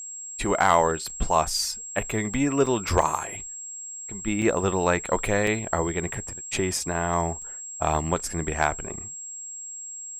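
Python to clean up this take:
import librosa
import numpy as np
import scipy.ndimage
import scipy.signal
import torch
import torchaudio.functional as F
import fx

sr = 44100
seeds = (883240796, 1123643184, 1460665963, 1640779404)

y = fx.fix_declip(x, sr, threshold_db=-7.0)
y = fx.notch(y, sr, hz=7600.0, q=30.0)
y = fx.fix_interpolate(y, sr, at_s=(1.1, 2.34, 2.66, 3.02, 4.42, 5.06, 5.47, 7.42), length_ms=3.1)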